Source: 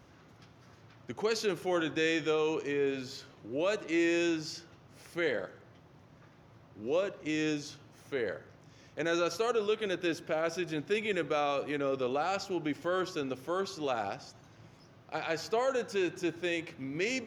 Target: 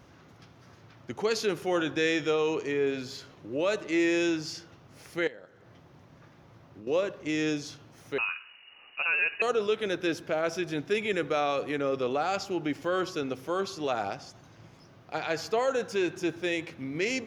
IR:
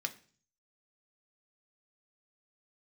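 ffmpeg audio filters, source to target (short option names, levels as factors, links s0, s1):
-filter_complex "[0:a]asettb=1/sr,asplit=3[s0][s1][s2];[s0]atrim=end=5.274[s3];[s1]atrim=start=5.27:end=6.87,asetpts=PTS-STARTPTS,afade=t=in:d=0.004:c=qsin,afade=t=out:st=1.596:d=0.004:c=qsin,acompressor=threshold=0.00501:ratio=12[s4];[s2]atrim=start=6.866[s5];[s3][s4]acrossfade=d=0.004:c1=hsin:c2=qsin[s6];[s6][s5]acrossfade=d=0.004:c1=qsin:c2=hsin,asettb=1/sr,asplit=3[s7][s8][s9];[s7]atrim=end=8.184[s10];[s8]atrim=start=8.18:end=9.42,asetpts=PTS-STARTPTS,afade=t=in:d=0.004:c=qsin,afade=t=out:st=1.236:d=0.004:c=qsin,lowpass=f=2600:t=q:w=0.5098,lowpass=f=2600:t=q:w=0.6013,lowpass=f=2600:t=q:w=0.9,lowpass=f=2600:t=q:w=2.563,afreqshift=-3000[s11];[s9]atrim=start=9.416[s12];[s10][s11]acrossfade=d=0.004:c1=hsin:c2=qsin[s13];[s13][s12]acrossfade=d=0.004:c1=qsin:c2=hsin,volume=1.41"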